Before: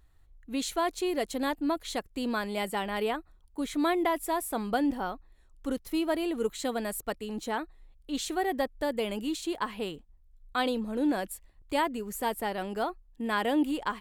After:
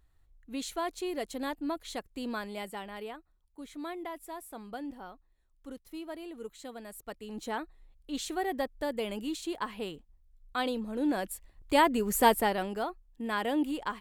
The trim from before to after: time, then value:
2.35 s -5 dB
3.18 s -12.5 dB
6.87 s -12.5 dB
7.46 s -3 dB
10.96 s -3 dB
12.26 s +8.5 dB
12.83 s -3 dB

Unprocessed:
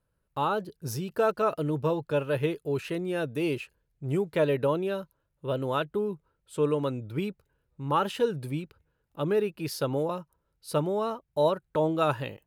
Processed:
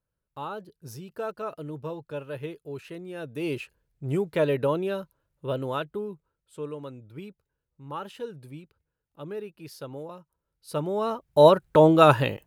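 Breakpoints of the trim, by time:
3.14 s -8 dB
3.60 s +1 dB
5.46 s +1 dB
6.70 s -10 dB
10.19 s -10 dB
10.74 s -3 dB
11.47 s +9.5 dB

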